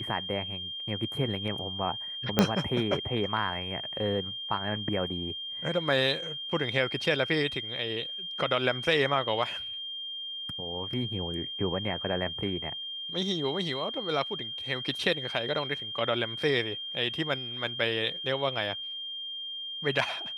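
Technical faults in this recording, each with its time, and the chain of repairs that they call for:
whine 3.2 kHz -35 dBFS
2.39 s: pop -6 dBFS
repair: de-click; band-stop 3.2 kHz, Q 30

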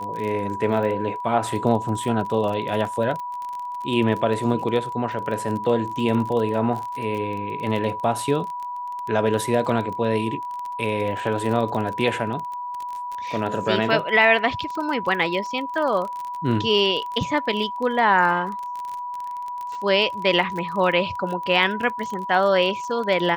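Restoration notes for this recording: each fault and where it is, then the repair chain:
crackle 29 per s -28 dBFS
whine 980 Hz -28 dBFS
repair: de-click; band-stop 980 Hz, Q 30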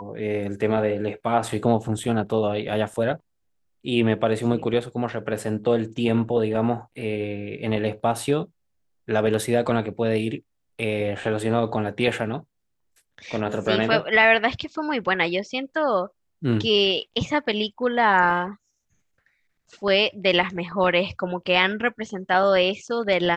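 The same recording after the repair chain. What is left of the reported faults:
nothing left

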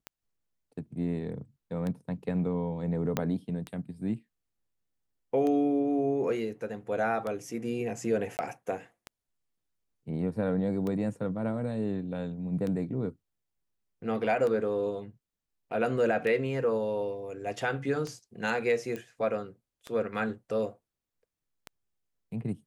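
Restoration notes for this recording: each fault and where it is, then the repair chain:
tick 33 1/3 rpm -22 dBFS
3.17 s: pop -13 dBFS
8.37–8.39 s: dropout 19 ms
18.96 s: pop -24 dBFS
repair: de-click; interpolate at 8.37 s, 19 ms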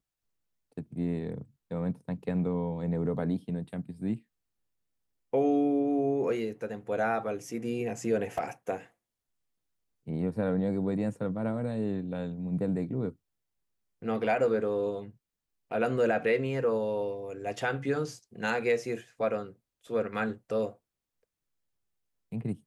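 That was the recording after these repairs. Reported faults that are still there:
3.17 s: pop

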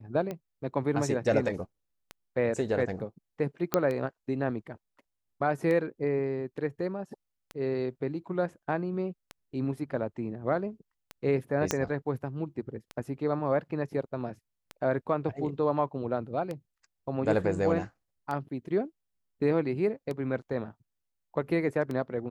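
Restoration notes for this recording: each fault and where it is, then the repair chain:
tick 33 1/3 rpm -22 dBFS
3.74 s: pop -9 dBFS
11.71 s: pop -11 dBFS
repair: de-click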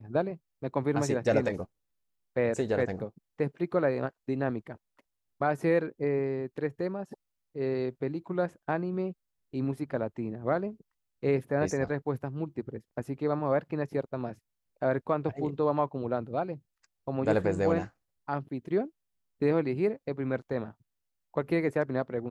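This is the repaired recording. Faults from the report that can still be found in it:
11.71 s: pop

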